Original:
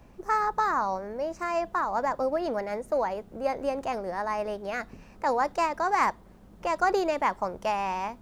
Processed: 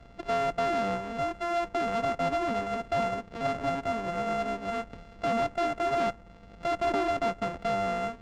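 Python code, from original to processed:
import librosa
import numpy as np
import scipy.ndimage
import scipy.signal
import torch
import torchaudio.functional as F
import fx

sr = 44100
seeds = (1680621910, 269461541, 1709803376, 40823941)

y = np.r_[np.sort(x[:len(x) // 64 * 64].reshape(-1, 64), axis=1).ravel(), x[len(x) // 64 * 64:]]
y = fx.dynamic_eq(y, sr, hz=3700.0, q=0.96, threshold_db=-44.0, ratio=4.0, max_db=-6)
y = np.clip(y, -10.0 ** (-25.0 / 20.0), 10.0 ** (-25.0 / 20.0))
y = fx.air_absorb(y, sr, metres=150.0)
y = fx.running_max(y, sr, window=5)
y = F.gain(torch.from_numpy(y), 2.0).numpy()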